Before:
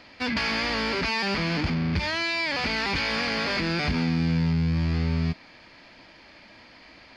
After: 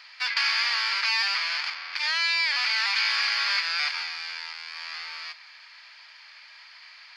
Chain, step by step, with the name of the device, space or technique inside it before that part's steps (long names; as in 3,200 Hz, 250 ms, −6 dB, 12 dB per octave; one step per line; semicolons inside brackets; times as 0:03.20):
headphones lying on a table (high-pass filter 1,100 Hz 24 dB per octave; parametric band 4,700 Hz +4 dB 0.44 octaves)
level +2.5 dB